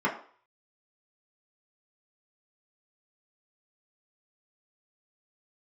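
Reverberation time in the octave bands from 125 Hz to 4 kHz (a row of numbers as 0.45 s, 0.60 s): 0.25 s, 0.40 s, 0.45 s, 0.50 s, 0.45 s, 0.45 s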